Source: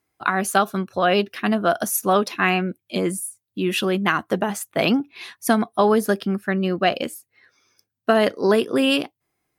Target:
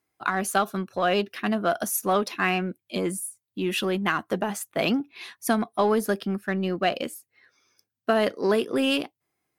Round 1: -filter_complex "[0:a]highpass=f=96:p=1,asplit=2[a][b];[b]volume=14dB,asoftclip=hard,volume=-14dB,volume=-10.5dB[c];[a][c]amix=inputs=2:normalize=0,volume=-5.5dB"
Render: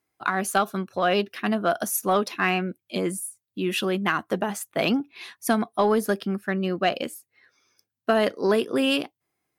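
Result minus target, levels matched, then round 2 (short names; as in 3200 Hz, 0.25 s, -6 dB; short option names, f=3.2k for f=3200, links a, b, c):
overloaded stage: distortion -8 dB
-filter_complex "[0:a]highpass=f=96:p=1,asplit=2[a][b];[b]volume=23dB,asoftclip=hard,volume=-23dB,volume=-10.5dB[c];[a][c]amix=inputs=2:normalize=0,volume=-5.5dB"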